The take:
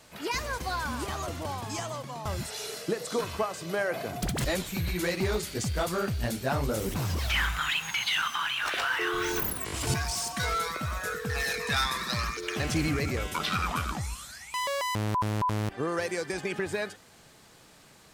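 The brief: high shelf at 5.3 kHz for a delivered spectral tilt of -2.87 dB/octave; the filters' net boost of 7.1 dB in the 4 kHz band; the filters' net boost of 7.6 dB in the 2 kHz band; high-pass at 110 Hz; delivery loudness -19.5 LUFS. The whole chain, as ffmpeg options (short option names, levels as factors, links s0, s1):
-af "highpass=110,equalizer=f=2000:t=o:g=8.5,equalizer=f=4000:t=o:g=9,highshelf=f=5300:g=-7.5,volume=2"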